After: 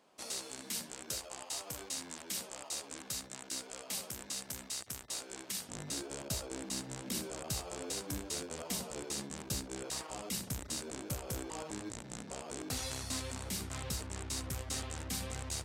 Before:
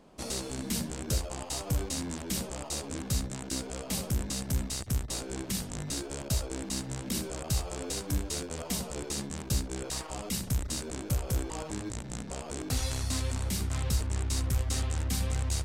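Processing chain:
high-pass filter 940 Hz 6 dB per octave, from 0:05.69 230 Hz
level −3.5 dB

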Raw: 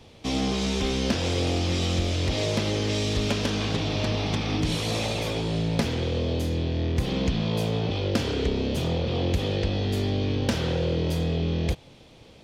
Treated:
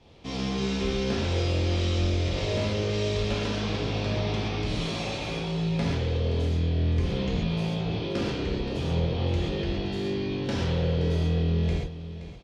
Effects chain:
high-frequency loss of the air 78 metres
single-tap delay 523 ms −13 dB
reverb whose tail is shaped and stops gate 160 ms flat, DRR −5 dB
level −8 dB

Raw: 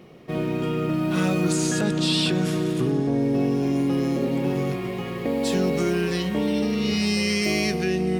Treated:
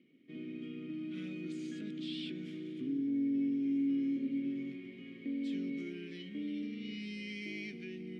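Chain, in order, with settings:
formant filter i
level −7 dB

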